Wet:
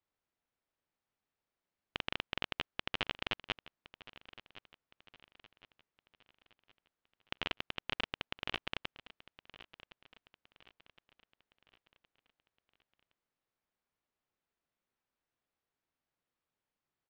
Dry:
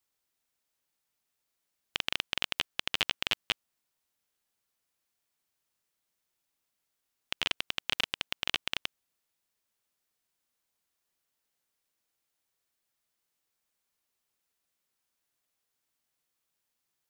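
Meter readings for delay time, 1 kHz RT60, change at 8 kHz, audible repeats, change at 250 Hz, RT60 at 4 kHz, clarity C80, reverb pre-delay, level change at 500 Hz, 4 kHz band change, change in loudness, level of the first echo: 1065 ms, no reverb, -18.5 dB, 3, +0.5 dB, no reverb, no reverb, no reverb, -0.5 dB, -8.5 dB, -7.0 dB, -17.5 dB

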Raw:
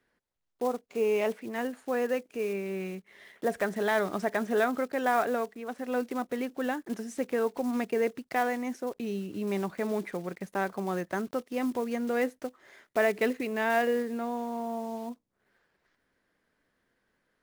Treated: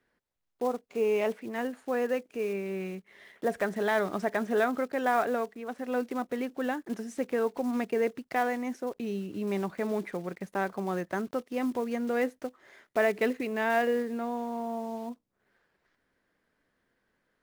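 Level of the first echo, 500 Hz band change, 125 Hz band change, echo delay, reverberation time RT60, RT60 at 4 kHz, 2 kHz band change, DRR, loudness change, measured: no echo, 0.0 dB, 0.0 dB, no echo, no reverb, no reverb, -0.5 dB, no reverb, 0.0 dB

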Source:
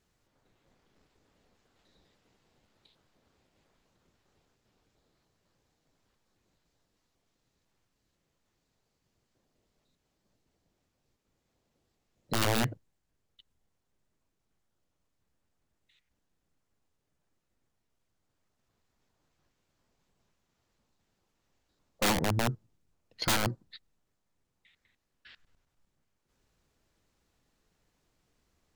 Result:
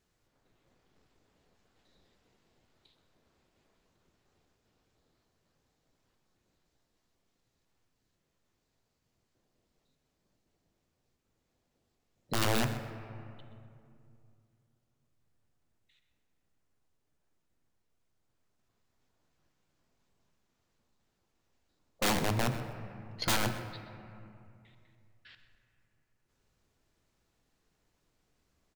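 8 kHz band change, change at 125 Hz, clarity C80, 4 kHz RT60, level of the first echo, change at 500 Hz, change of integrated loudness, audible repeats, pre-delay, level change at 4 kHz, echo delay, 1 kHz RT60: -1.5 dB, -1.0 dB, 9.0 dB, 1.5 s, -14.5 dB, -1.0 dB, -2.5 dB, 1, 3 ms, -1.5 dB, 127 ms, 2.5 s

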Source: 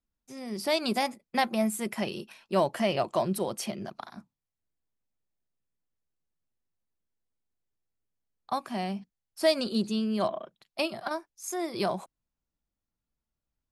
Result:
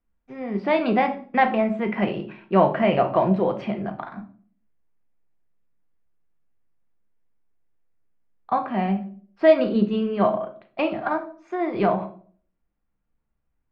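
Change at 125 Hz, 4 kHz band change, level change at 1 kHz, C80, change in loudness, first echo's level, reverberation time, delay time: +9.5 dB, -5.0 dB, +9.0 dB, 17.0 dB, +7.5 dB, no echo, 0.50 s, no echo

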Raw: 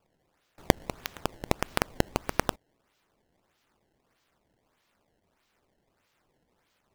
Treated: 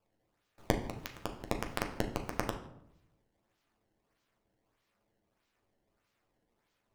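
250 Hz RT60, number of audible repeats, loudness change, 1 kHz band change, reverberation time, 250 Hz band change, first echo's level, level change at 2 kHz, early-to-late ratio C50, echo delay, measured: 1.0 s, no echo, -6.5 dB, -7.0 dB, 0.80 s, -5.0 dB, no echo, -7.0 dB, 9.5 dB, no echo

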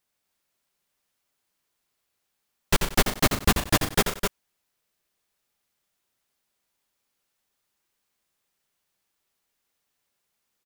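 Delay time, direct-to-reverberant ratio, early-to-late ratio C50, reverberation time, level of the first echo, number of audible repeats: 87 ms, no reverb, no reverb, no reverb, -6.5 dB, 4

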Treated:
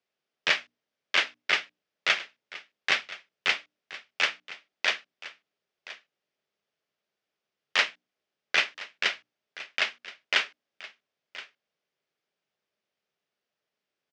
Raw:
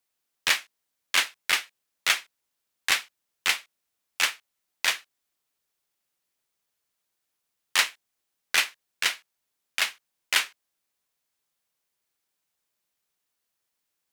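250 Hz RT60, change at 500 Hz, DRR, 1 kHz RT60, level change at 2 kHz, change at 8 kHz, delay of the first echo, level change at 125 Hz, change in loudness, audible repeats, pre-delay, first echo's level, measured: no reverb, +5.0 dB, no reverb, no reverb, 0.0 dB, -12.0 dB, 1023 ms, no reading, -1.5 dB, 1, no reverb, -17.0 dB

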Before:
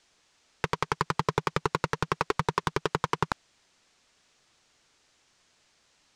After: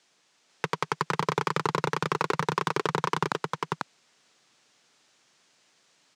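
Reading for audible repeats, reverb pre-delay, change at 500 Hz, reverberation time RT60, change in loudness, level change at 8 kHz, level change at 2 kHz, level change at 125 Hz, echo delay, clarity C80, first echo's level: 1, no reverb, +2.0 dB, no reverb, +1.0 dB, +2.0 dB, +2.0 dB, 0.0 dB, 494 ms, no reverb, -3.0 dB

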